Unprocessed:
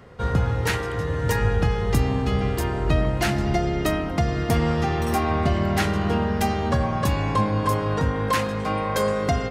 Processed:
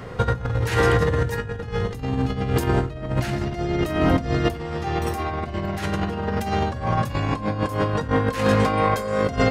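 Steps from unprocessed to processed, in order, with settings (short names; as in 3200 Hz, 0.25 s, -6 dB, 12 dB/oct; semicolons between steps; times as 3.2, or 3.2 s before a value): negative-ratio compressor -27 dBFS, ratio -0.5; reverb, pre-delay 6 ms, DRR 10.5 dB; gain +5 dB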